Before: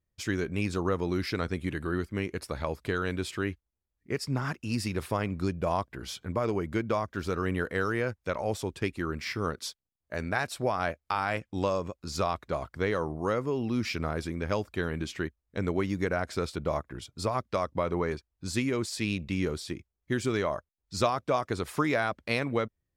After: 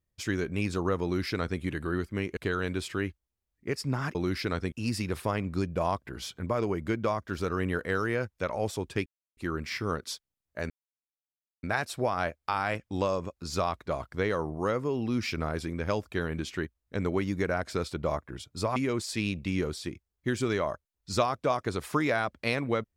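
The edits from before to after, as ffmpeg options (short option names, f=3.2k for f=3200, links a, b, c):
-filter_complex "[0:a]asplit=7[a][b][c][d][e][f][g];[a]atrim=end=2.372[h];[b]atrim=start=2.798:end=4.582[i];[c]atrim=start=1.028:end=1.602[j];[d]atrim=start=4.578:end=8.92,asetpts=PTS-STARTPTS,afade=t=out:st=4.338:d=0.004:c=hsin,apad=pad_dur=0.31[k];[e]atrim=start=8.92:end=10.25,asetpts=PTS-STARTPTS,afade=t=in:d=0.004:c=hsin,afade=t=out:st=1.326:d=0.004:c=hsin,apad=pad_dur=0.93[l];[f]atrim=start=10.25:end=17.382,asetpts=PTS-STARTPTS,afade=t=in:d=0.004:c=hsin[m];[g]atrim=start=18.598[n];[h][i]acrossfade=d=0.004:c1=hsin:c2=hsin[o];[o][j]acrossfade=d=0.004:c1=hsin:c2=hsin[p];[k][l][m]concat=n=3:v=0:a=1[q];[p][q]acrossfade=d=0.004:c1=hsin:c2=hsin[r];[r][n]acrossfade=d=0.004:c1=hsin:c2=hsin"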